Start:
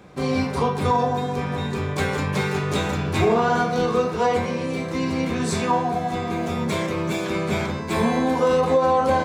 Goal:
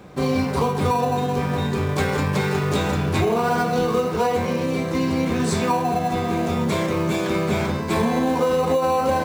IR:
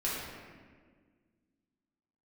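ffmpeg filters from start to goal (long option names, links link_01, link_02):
-filter_complex "[0:a]asplit=2[link_01][link_02];[link_02]acrusher=samples=13:mix=1:aa=0.000001,volume=-10dB[link_03];[link_01][link_03]amix=inputs=2:normalize=0,acompressor=threshold=-18dB:ratio=6,volume=1.5dB"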